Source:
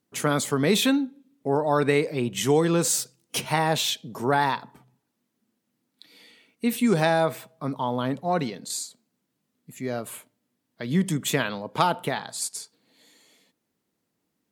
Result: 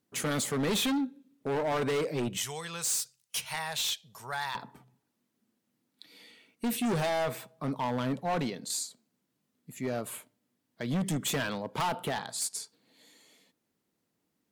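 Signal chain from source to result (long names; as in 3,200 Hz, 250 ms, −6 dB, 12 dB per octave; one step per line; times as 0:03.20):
0:02.37–0:04.55: guitar amp tone stack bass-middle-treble 10-0-10
hard clipping −24.5 dBFS, distortion −6 dB
level −2 dB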